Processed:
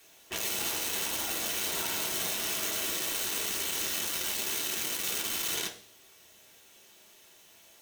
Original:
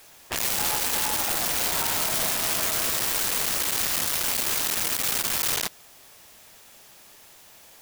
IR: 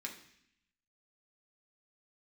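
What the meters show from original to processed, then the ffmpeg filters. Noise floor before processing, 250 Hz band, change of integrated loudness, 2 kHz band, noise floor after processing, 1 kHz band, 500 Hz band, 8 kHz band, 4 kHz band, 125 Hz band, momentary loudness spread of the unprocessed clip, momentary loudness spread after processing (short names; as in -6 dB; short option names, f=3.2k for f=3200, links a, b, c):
-51 dBFS, -4.5 dB, -7.0 dB, -6.0 dB, -58 dBFS, -9.5 dB, -5.5 dB, -6.0 dB, -4.5 dB, -9.5 dB, 1 LU, 2 LU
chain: -filter_complex "[1:a]atrim=start_sample=2205,asetrate=70560,aresample=44100[a];[0:a][a]afir=irnorm=-1:irlink=0"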